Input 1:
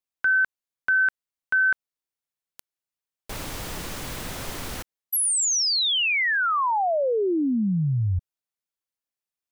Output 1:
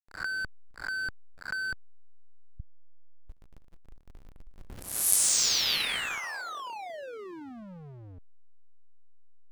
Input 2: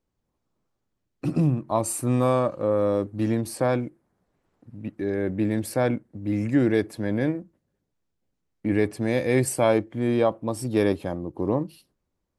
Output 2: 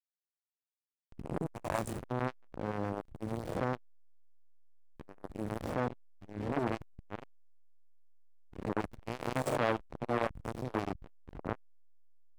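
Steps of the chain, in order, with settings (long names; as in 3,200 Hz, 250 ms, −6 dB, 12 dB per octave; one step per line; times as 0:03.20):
peak hold with a rise ahead of every peak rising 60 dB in 1.37 s
slack as between gear wheels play −14.5 dBFS
saturating transformer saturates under 1,200 Hz
level −6 dB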